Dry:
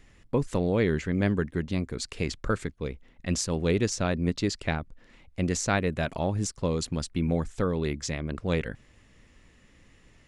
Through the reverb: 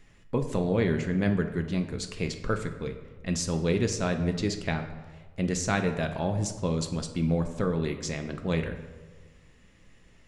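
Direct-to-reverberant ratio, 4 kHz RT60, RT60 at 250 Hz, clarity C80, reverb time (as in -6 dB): 5.0 dB, 0.80 s, 1.4 s, 11.0 dB, 1.4 s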